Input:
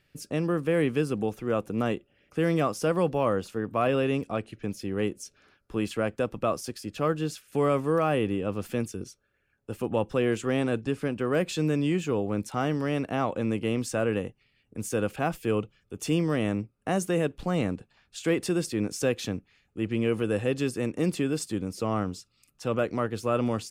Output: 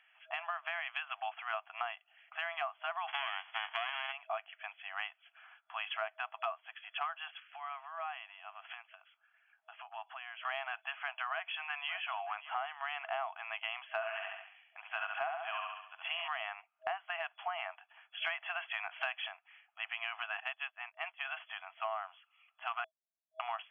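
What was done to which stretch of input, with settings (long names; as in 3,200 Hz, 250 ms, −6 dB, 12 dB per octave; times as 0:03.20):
0:00.86–0:01.82: spectral tilt +2 dB per octave
0:03.07–0:04.11: spectral envelope flattened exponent 0.1
0:07.30–0:10.45: downward compressor 3 to 1, threshold −41 dBFS
0:11.29–0:11.90: delay throw 580 ms, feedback 40%, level −16.5 dB
0:13.94–0:16.28: repeating echo 69 ms, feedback 49%, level −3.5 dB
0:18.22–0:19.28: clip gain +8 dB
0:20.40–0:21.25: expander for the loud parts 2.5 to 1, over −39 dBFS
0:22.84–0:23.40: beep over 271 Hz −24 dBFS
whole clip: brick-wall band-pass 640–3,400 Hz; downward compressor 10 to 1, threshold −39 dBFS; level +5 dB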